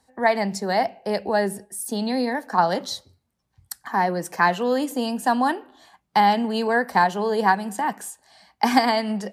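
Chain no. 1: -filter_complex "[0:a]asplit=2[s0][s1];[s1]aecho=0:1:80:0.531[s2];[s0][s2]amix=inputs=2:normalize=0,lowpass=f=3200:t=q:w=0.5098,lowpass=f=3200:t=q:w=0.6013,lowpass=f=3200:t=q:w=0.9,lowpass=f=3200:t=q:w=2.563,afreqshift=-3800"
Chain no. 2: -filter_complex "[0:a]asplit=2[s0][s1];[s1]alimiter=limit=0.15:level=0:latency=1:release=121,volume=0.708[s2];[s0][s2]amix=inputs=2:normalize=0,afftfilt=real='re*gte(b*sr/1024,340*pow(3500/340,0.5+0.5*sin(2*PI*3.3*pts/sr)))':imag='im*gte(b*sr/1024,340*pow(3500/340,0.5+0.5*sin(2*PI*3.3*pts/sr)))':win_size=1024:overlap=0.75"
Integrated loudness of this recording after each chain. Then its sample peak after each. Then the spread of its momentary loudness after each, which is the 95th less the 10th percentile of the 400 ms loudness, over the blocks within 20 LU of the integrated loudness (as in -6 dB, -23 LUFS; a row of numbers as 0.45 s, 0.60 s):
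-18.5 LUFS, -24.0 LUFS; -3.5 dBFS, -4.0 dBFS; 8 LU, 10 LU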